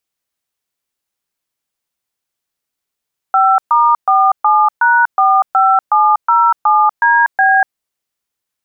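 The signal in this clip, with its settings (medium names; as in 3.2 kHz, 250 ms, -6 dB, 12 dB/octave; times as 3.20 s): DTMF "5*47#45707DB", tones 242 ms, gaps 126 ms, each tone -10 dBFS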